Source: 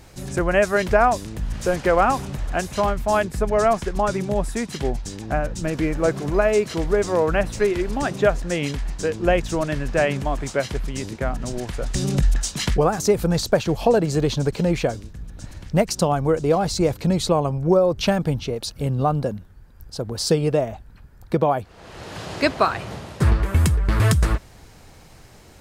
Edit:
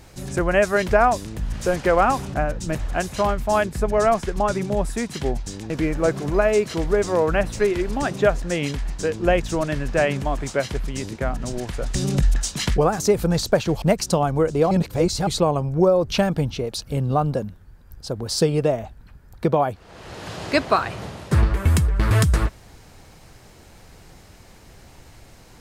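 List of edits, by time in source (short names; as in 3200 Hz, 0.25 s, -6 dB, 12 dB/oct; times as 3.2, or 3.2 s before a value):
5.29–5.7 move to 2.34
13.82–15.71 cut
16.6–17.16 reverse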